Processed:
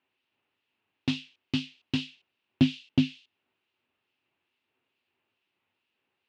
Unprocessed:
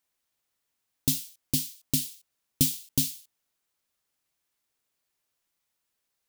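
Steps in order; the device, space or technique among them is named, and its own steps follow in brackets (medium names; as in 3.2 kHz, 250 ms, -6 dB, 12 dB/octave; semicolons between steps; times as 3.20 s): guitar amplifier with harmonic tremolo (harmonic tremolo 2.3 Hz, depth 50%, crossover 2.3 kHz; saturation -20.5 dBFS, distortion -12 dB; cabinet simulation 98–3500 Hz, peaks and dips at 100 Hz +8 dB, 250 Hz +7 dB, 370 Hz +9 dB, 880 Hz +4 dB, 2.7 kHz +10 dB); trim +5.5 dB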